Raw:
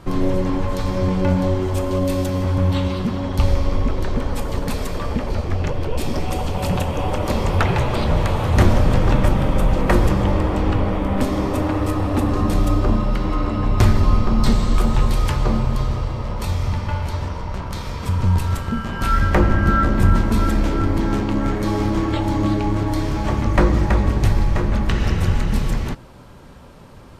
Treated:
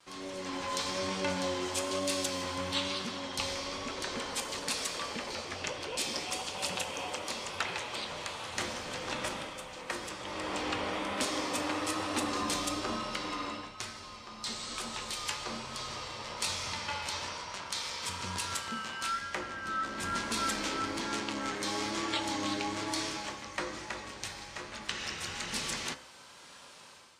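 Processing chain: de-hum 66.22 Hz, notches 34; vibrato 1.1 Hz 40 cents; weighting filter ITU-R 468; AGC gain up to 10.5 dB; dynamic EQ 280 Hz, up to +4 dB, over -33 dBFS, Q 0.95; resonator 510 Hz, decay 0.67 s, mix 60%; gain -8.5 dB

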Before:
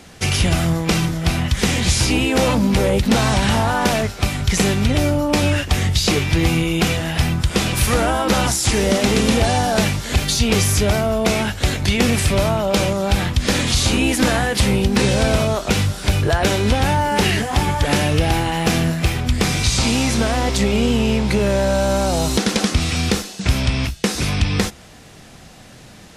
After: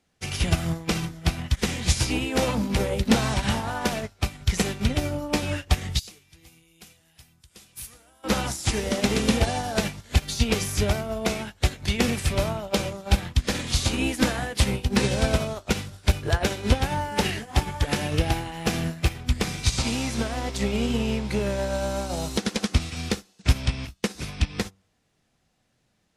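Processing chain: de-hum 96.46 Hz, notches 14; 5.99–8.24 pre-emphasis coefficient 0.8; upward expander 2.5:1, over -30 dBFS

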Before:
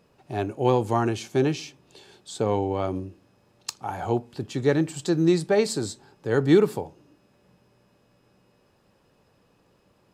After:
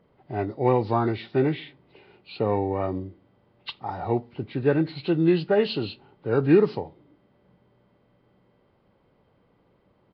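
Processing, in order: nonlinear frequency compression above 1200 Hz 1.5:1; downsampling 11025 Hz; mismatched tape noise reduction decoder only

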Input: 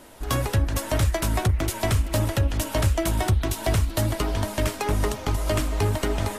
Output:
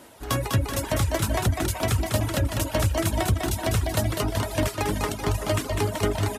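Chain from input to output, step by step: on a send: bouncing-ball echo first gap 0.2 s, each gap 0.9×, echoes 5; on the sum: reverb removal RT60 0.81 s; HPF 70 Hz

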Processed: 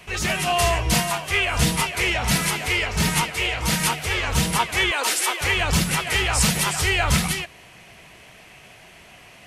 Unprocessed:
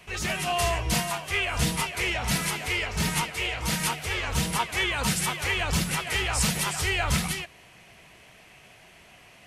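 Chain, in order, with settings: 4.91–5.41 steep high-pass 290 Hz 48 dB/oct; gain +5.5 dB

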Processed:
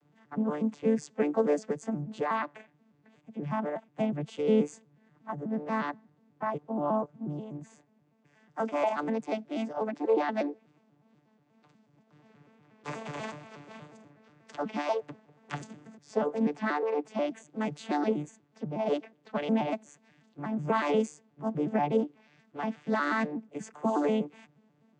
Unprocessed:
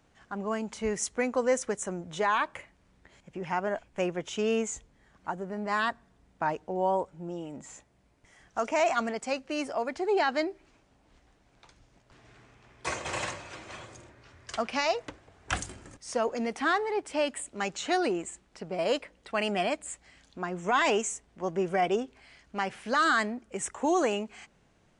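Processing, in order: arpeggiated vocoder bare fifth, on D3, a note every 0.121 s; wow and flutter 23 cents; harmoniser +3 st -14 dB

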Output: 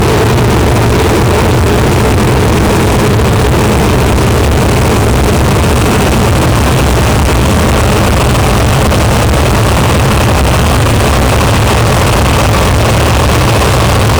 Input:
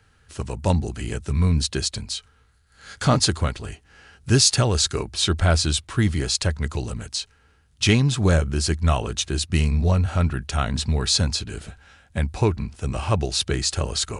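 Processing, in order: Paulstretch 46×, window 1.00 s, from 12.65; fuzz box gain 45 dB, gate -48 dBFS; gain +6.5 dB

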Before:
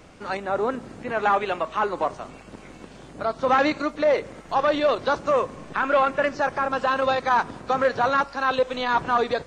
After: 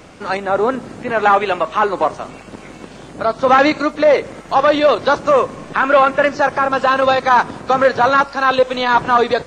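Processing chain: low shelf 61 Hz -7.5 dB; gain +8.5 dB

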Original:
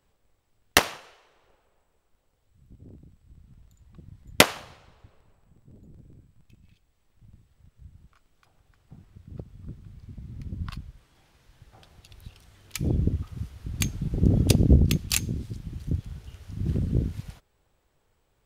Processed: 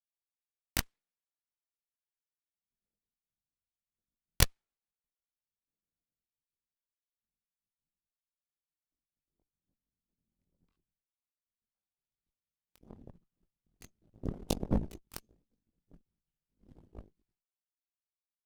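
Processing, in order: full-wave rectifier; chorus voices 4, 0.12 Hz, delay 21 ms, depth 3.1 ms; added harmonics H 3 -9 dB, 5 -37 dB, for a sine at -3.5 dBFS

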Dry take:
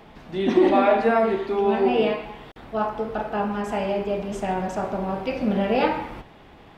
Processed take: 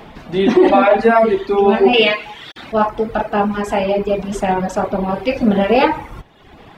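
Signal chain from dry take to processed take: reverb removal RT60 0.95 s; 1.93–2.72 weighting filter D; maximiser +11 dB; gain -1 dB

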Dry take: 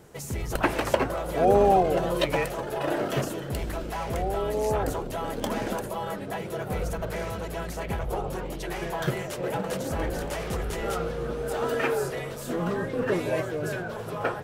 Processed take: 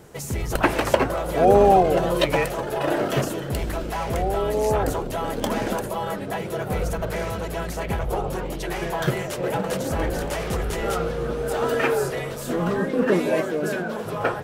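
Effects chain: 12.79–14.05 resonant low shelf 150 Hz -9.5 dB, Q 3; gain +4.5 dB

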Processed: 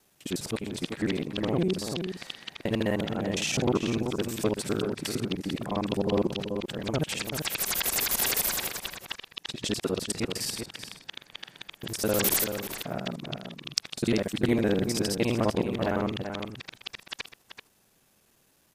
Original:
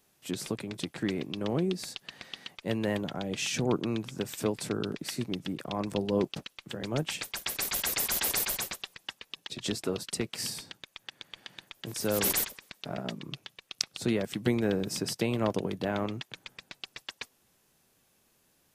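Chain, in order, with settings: local time reversal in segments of 51 ms; outdoor echo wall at 66 m, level -7 dB; gain +3 dB

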